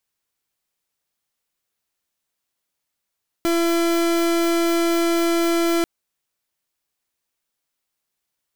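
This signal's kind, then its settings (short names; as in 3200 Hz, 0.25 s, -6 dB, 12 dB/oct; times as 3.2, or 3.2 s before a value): pulse 337 Hz, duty 37% -19 dBFS 2.39 s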